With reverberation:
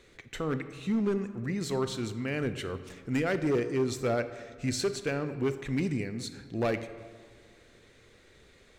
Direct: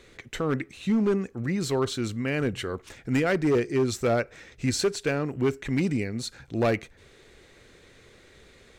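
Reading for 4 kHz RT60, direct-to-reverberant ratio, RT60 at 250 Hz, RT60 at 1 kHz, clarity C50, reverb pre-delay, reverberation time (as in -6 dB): 1.0 s, 11.0 dB, 2.0 s, 1.7 s, 12.0 dB, 31 ms, 1.8 s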